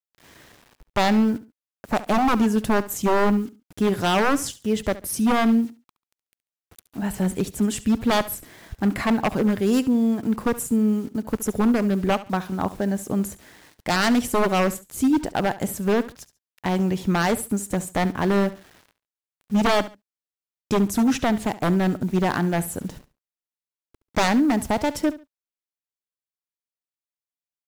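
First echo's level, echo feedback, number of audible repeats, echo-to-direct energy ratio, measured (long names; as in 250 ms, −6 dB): −16.5 dB, 25%, 2, −16.0 dB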